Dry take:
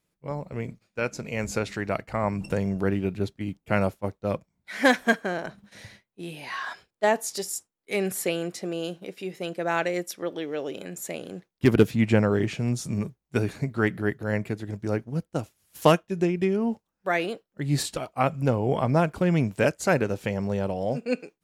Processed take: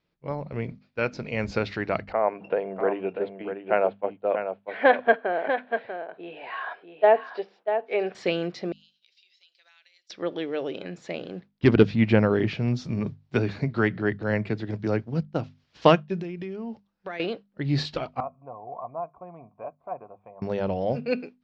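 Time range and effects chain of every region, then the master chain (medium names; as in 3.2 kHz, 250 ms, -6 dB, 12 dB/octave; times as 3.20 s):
2.12–8.15 s: cabinet simulation 410–2700 Hz, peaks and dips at 450 Hz +6 dB, 690 Hz +6 dB, 1.2 kHz -3 dB, 2 kHz -6 dB + delay 642 ms -8 dB
8.72–10.10 s: Butterworth band-pass 5.7 kHz, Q 1.1 + compression, threshold -56 dBFS + three bands expanded up and down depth 70%
13.06–15.23 s: treble shelf 10 kHz +11.5 dB + three bands compressed up and down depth 40%
16.20–17.20 s: treble shelf 5.7 kHz +9 dB + compression, threshold -33 dBFS
18.20–20.42 s: cascade formant filter a + band-stop 790 Hz, Q 7.2
whole clip: steep low-pass 4.9 kHz 36 dB/octave; hum notches 50/100/150/200/250 Hz; trim +1.5 dB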